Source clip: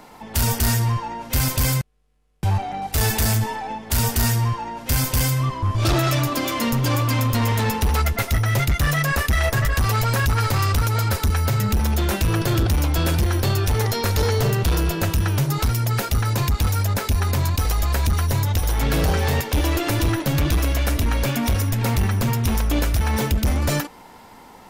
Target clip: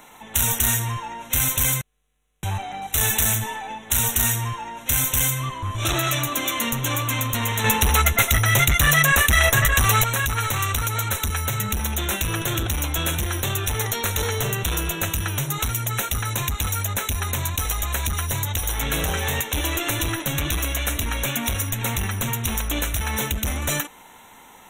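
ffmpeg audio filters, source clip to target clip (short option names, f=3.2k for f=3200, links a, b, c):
-filter_complex "[0:a]tiltshelf=f=1.3k:g=-6,asettb=1/sr,asplit=3[a][b][c];[a]atrim=end=7.644[d];[b]atrim=start=7.64:end=10.04,asetpts=PTS-STARTPTS,afade=t=in:d=0.004:c=qsin,afade=t=out:st=2.396:d=0.004:c=qsin,acontrast=52[e];[c]atrim=start=10.036[f];[d][e]acrossfade=d=0.004:c1=hsin:c2=qsin[g];[g][f]acrossfade=d=0.004:c1=qsin:c2=hsin,asuperstop=centerf=4800:order=12:qfactor=3,volume=-1dB"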